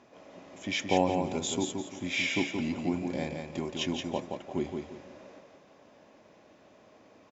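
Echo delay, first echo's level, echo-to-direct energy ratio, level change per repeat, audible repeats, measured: 173 ms, −5.0 dB, −4.5 dB, −10.0 dB, 3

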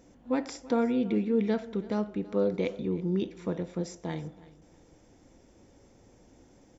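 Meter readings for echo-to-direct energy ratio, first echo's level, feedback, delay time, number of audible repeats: −20.0 dB, −20.0 dB, 24%, 329 ms, 2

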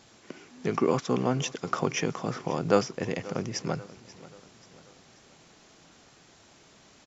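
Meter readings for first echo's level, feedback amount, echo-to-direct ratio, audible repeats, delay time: −19.0 dB, 48%, −18.0 dB, 3, 535 ms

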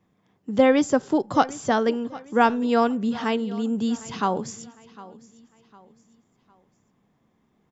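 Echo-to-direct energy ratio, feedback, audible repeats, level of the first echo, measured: −19.0 dB, 37%, 2, −19.5 dB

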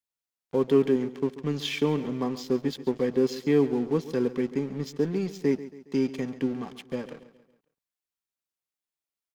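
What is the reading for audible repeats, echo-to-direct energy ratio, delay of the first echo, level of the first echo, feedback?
3, −14.5 dB, 138 ms, −15.5 dB, 46%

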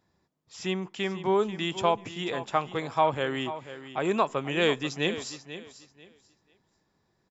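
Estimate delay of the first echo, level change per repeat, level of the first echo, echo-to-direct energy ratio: 489 ms, −13.0 dB, −13.0 dB, −13.0 dB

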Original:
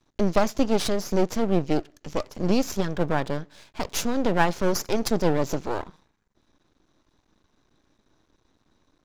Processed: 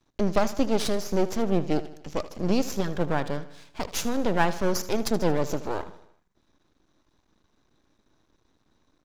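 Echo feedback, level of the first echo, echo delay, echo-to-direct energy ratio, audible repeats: 53%, −15.5 dB, 77 ms, −14.0 dB, 4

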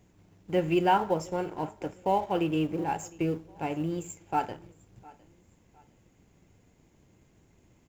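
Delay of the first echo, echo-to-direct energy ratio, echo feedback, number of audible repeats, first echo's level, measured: 708 ms, −23.0 dB, 36%, 2, −23.5 dB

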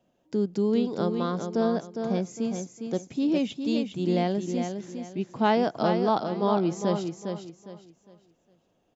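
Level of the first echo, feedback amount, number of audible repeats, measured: −6.5 dB, 29%, 3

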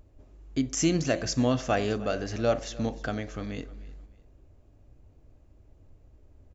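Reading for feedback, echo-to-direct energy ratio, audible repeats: 30%, −19.0 dB, 2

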